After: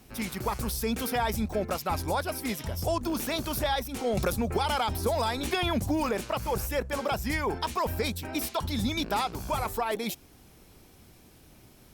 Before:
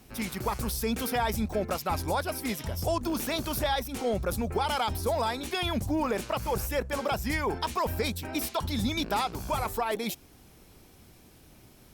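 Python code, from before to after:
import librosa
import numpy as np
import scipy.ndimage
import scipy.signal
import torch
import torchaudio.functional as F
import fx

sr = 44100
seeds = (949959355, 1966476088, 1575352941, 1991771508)

y = fx.band_squash(x, sr, depth_pct=100, at=(4.17, 6.09))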